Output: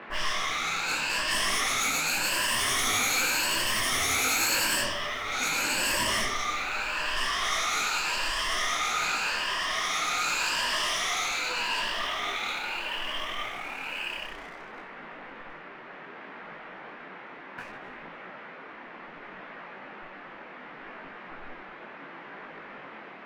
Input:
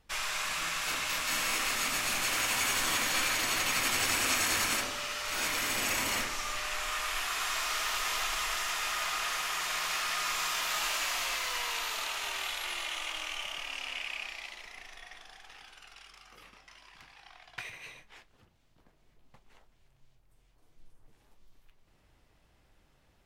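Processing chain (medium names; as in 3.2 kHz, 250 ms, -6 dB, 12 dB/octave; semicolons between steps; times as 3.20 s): drifting ripple filter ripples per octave 1.3, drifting +0.85 Hz, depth 13 dB; vibrato 1.8 Hz 5.5 cents; level-controlled noise filter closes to 640 Hz, open at -24.5 dBFS; waveshaping leveller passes 3; band noise 170–2100 Hz -37 dBFS; detune thickener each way 23 cents; trim -3.5 dB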